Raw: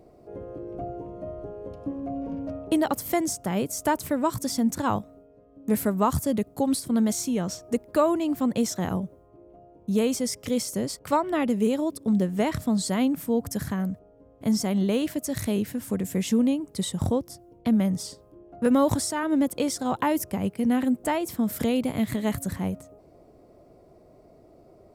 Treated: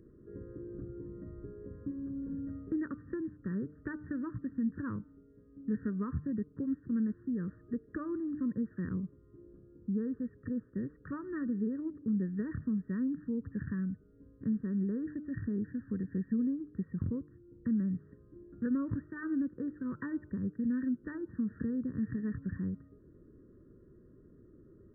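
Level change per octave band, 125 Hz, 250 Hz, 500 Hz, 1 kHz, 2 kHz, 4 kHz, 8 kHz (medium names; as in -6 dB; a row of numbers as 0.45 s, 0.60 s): -7.5 dB, -8.5 dB, -17.5 dB, -24.5 dB, -12.5 dB, under -40 dB, under -40 dB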